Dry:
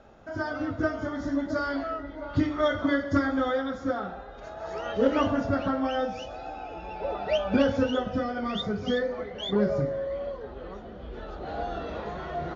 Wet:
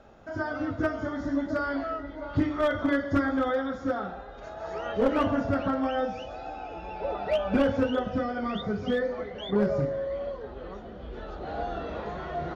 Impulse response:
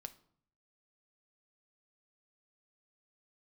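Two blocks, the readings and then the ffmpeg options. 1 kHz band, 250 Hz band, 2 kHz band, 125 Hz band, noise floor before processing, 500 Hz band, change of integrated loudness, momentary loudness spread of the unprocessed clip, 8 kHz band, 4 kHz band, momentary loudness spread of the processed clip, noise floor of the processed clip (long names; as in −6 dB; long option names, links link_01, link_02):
0.0 dB, −0.5 dB, −0.5 dB, −0.5 dB, −42 dBFS, −0.5 dB, −0.5 dB, 14 LU, can't be measured, −4.5 dB, 13 LU, −42 dBFS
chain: -filter_complex "[0:a]acrossover=split=3100[link_01][link_02];[link_02]acompressor=threshold=-56dB:ratio=4:attack=1:release=60[link_03];[link_01][link_03]amix=inputs=2:normalize=0,aeval=exprs='clip(val(0),-1,0.106)':channel_layout=same"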